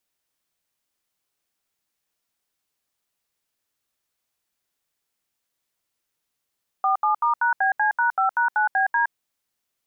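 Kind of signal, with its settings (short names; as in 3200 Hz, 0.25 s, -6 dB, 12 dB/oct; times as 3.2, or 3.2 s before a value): DTMF "47*#BC#5#9BD", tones 0.116 s, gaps 75 ms, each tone -20 dBFS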